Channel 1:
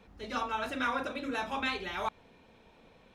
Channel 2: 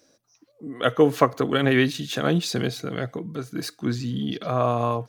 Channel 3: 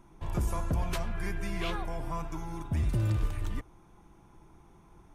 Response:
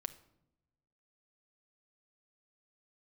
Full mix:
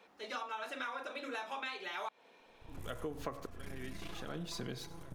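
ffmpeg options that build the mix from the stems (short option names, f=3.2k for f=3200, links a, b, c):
-filter_complex "[0:a]highpass=440,volume=0dB,asplit=2[a][b];[1:a]bandreject=f=70.16:t=h:w=4,bandreject=f=140.32:t=h:w=4,bandreject=f=210.48:t=h:w=4,bandreject=f=280.64:t=h:w=4,bandreject=f=350.8:t=h:w=4,bandreject=f=420.96:t=h:w=4,bandreject=f=491.12:t=h:w=4,bandreject=f=561.28:t=h:w=4,bandreject=f=631.44:t=h:w=4,bandreject=f=701.6:t=h:w=4,bandreject=f=771.76:t=h:w=4,bandreject=f=841.92:t=h:w=4,bandreject=f=912.08:t=h:w=4,bandreject=f=982.24:t=h:w=4,bandreject=f=1.0524k:t=h:w=4,bandreject=f=1.12256k:t=h:w=4,bandreject=f=1.19272k:t=h:w=4,bandreject=f=1.26288k:t=h:w=4,bandreject=f=1.33304k:t=h:w=4,bandreject=f=1.4032k:t=h:w=4,bandreject=f=1.47336k:t=h:w=4,bandreject=f=1.54352k:t=h:w=4,bandreject=f=1.61368k:t=h:w=4,bandreject=f=1.68384k:t=h:w=4,bandreject=f=1.754k:t=h:w=4,bandreject=f=1.82416k:t=h:w=4,bandreject=f=1.89432k:t=h:w=4,bandreject=f=1.96448k:t=h:w=4,bandreject=f=2.03464k:t=h:w=4,bandreject=f=2.1048k:t=h:w=4,bandreject=f=2.17496k:t=h:w=4,bandreject=f=2.24512k:t=h:w=4,bandreject=f=2.31528k:t=h:w=4,bandreject=f=2.38544k:t=h:w=4,bandreject=f=2.4556k:t=h:w=4,bandreject=f=2.52576k:t=h:w=4,bandreject=f=2.59592k:t=h:w=4,bandreject=f=2.66608k:t=h:w=4,bandreject=f=2.73624k:t=h:w=4,aeval=exprs='val(0)*pow(10,-29*if(lt(mod(-0.71*n/s,1),2*abs(-0.71)/1000),1-mod(-0.71*n/s,1)/(2*abs(-0.71)/1000),(mod(-0.71*n/s,1)-2*abs(-0.71)/1000)/(1-2*abs(-0.71)/1000))/20)':c=same,adelay=2050,volume=-5dB,asplit=2[c][d];[d]volume=-20.5dB[e];[2:a]highshelf=f=8.7k:g=10.5,aeval=exprs='max(val(0),0)':c=same,adelay=2400,volume=-10.5dB,asplit=2[f][g];[g]volume=-5dB[h];[b]apad=whole_len=332889[i];[f][i]sidechaincompress=threshold=-46dB:ratio=8:attack=37:release=964[j];[e][h]amix=inputs=2:normalize=0,aecho=0:1:95|190|285|380:1|0.31|0.0961|0.0298[k];[a][c][j][k]amix=inputs=4:normalize=0,acompressor=threshold=-38dB:ratio=6"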